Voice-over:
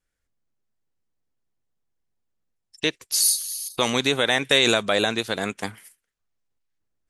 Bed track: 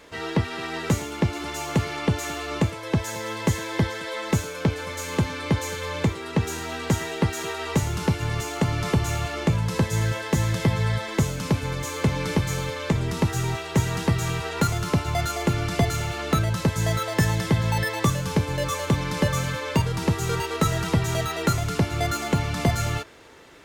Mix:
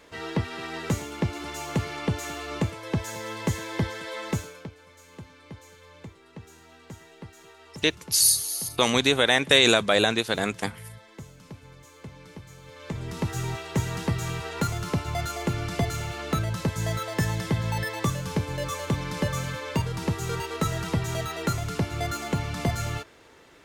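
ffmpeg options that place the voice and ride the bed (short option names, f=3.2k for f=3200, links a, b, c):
-filter_complex "[0:a]adelay=5000,volume=0.5dB[a];[1:a]volume=12dB,afade=t=out:st=4.26:d=0.44:silence=0.149624,afade=t=in:st=12.62:d=0.76:silence=0.158489[b];[a][b]amix=inputs=2:normalize=0"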